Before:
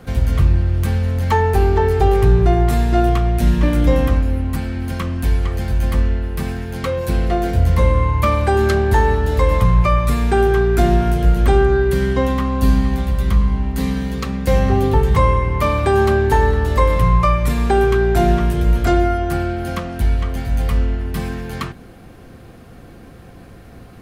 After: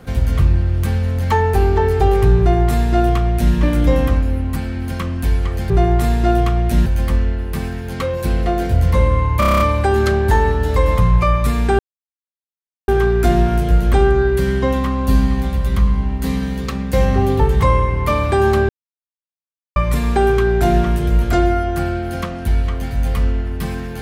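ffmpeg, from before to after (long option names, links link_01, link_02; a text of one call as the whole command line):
ffmpeg -i in.wav -filter_complex "[0:a]asplit=13[link_01][link_02][link_03][link_04][link_05][link_06][link_07][link_08][link_09][link_10][link_11][link_12][link_13];[link_01]atrim=end=5.702[link_14];[link_02]atrim=start=2.388:end=3.552[link_15];[link_03]atrim=start=5.698:end=8.262[link_16];[link_04]atrim=start=8.228:end=8.262[link_17];[link_05]atrim=start=8.228:end=8.262[link_18];[link_06]atrim=start=8.228:end=8.262[link_19];[link_07]atrim=start=8.228:end=8.262[link_20];[link_08]atrim=start=8.228:end=8.262[link_21];[link_09]atrim=start=8.228:end=8.262[link_22];[link_10]atrim=start=8.228:end=10.42,asetpts=PTS-STARTPTS,afade=type=out:start_time=2.188:duration=0.004:curve=hsin,apad=pad_dur=1.09[link_23];[link_11]atrim=start=10.42:end=16.23,asetpts=PTS-STARTPTS,afade=type=in:duration=0.004:curve=hsin,afade=type=out:start_time=5.806:duration=0.004:curve=hsin[link_24];[link_12]atrim=start=16.23:end=17.3,asetpts=PTS-STARTPTS,volume=0[link_25];[link_13]atrim=start=17.3,asetpts=PTS-STARTPTS,afade=type=in:duration=0.004:curve=hsin[link_26];[link_14][link_15]acrossfade=duration=0.004:curve1=hsin:curve2=hsin[link_27];[link_27][link_16]acrossfade=duration=0.004:curve1=hsin:curve2=hsin[link_28];[link_28][link_17]acrossfade=duration=0.004:curve1=hsin:curve2=hsin[link_29];[link_29][link_18]acrossfade=duration=0.004:curve1=hsin:curve2=hsin[link_30];[link_30][link_19]acrossfade=duration=0.004:curve1=hsin:curve2=hsin[link_31];[link_31][link_20]acrossfade=duration=0.004:curve1=hsin:curve2=hsin[link_32];[link_32][link_21]acrossfade=duration=0.004:curve1=hsin:curve2=hsin[link_33];[link_33][link_22]acrossfade=duration=0.004:curve1=hsin:curve2=hsin[link_34];[link_23][link_24][link_25][link_26]concat=n=4:v=0:a=1[link_35];[link_34][link_35]acrossfade=duration=0.004:curve1=hsin:curve2=hsin" out.wav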